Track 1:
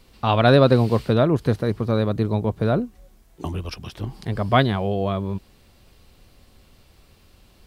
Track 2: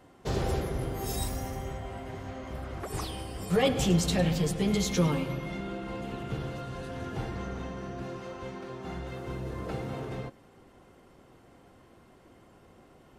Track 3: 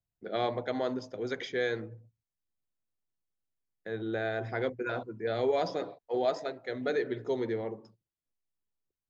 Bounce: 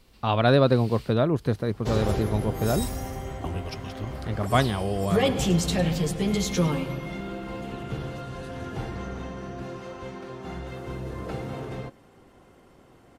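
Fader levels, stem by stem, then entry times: -4.5 dB, +2.0 dB, mute; 0.00 s, 1.60 s, mute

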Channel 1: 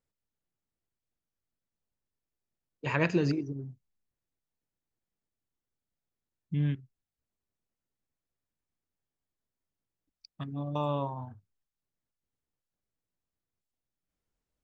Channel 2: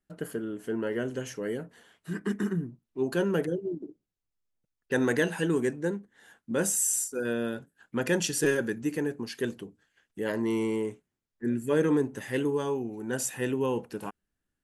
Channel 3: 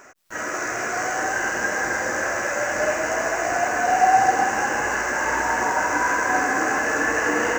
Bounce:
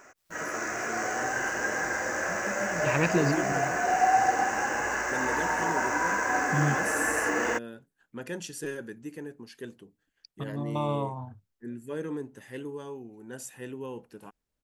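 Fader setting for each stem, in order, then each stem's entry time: +1.5 dB, -10.0 dB, -6.0 dB; 0.00 s, 0.20 s, 0.00 s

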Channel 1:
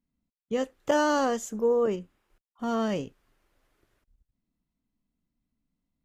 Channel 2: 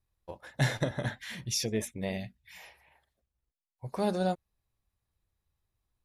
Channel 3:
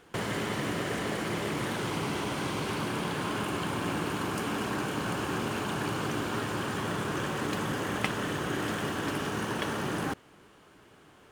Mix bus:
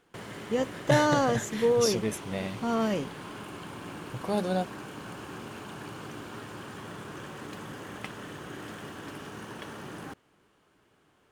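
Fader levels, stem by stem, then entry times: 0.0 dB, +0.5 dB, -9.5 dB; 0.00 s, 0.30 s, 0.00 s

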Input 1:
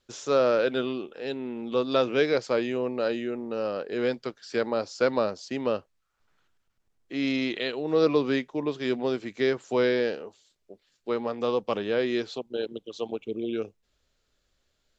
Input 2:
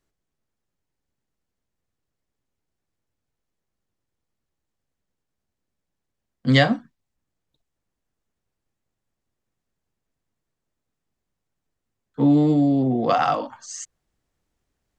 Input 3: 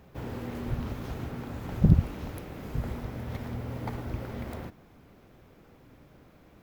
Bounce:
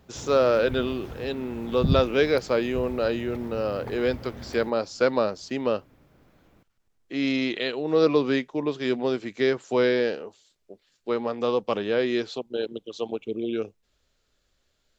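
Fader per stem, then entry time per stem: +2.0 dB, mute, -3.5 dB; 0.00 s, mute, 0.00 s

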